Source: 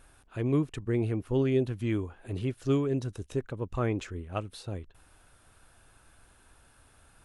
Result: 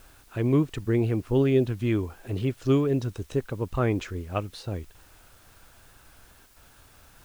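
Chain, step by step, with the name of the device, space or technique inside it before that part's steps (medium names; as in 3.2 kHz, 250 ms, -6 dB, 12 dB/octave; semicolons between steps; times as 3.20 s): worn cassette (low-pass 7.2 kHz; wow and flutter; level dips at 6.46 s, 102 ms -10 dB; white noise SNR 32 dB); trim +4.5 dB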